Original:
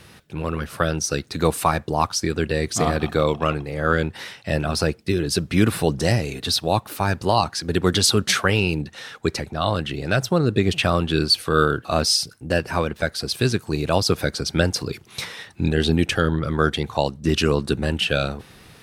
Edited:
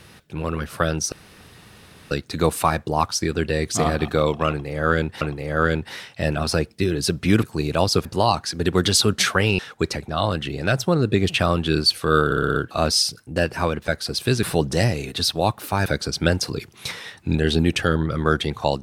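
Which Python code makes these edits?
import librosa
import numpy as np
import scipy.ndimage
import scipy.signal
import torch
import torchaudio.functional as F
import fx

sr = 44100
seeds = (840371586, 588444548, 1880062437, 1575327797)

y = fx.edit(x, sr, fx.insert_room_tone(at_s=1.12, length_s=0.99),
    fx.repeat(start_s=3.49, length_s=0.73, count=2),
    fx.swap(start_s=5.71, length_s=1.43, other_s=13.57, other_length_s=0.62),
    fx.cut(start_s=8.68, length_s=0.35),
    fx.stutter(start_s=11.69, slice_s=0.06, count=6), tone=tone)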